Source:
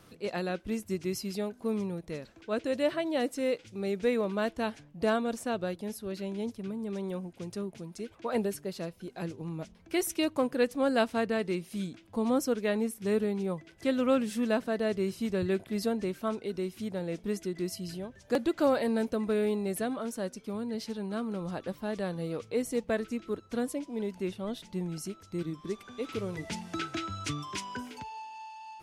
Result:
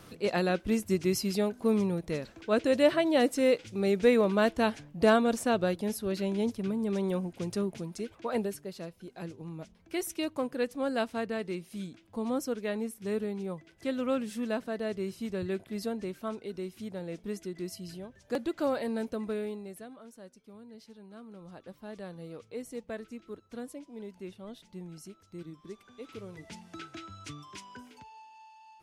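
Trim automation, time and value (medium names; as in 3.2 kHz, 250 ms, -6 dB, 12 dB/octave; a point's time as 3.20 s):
7.75 s +5 dB
8.67 s -4 dB
19.27 s -4 dB
19.90 s -15 dB
21.12 s -15 dB
21.93 s -9 dB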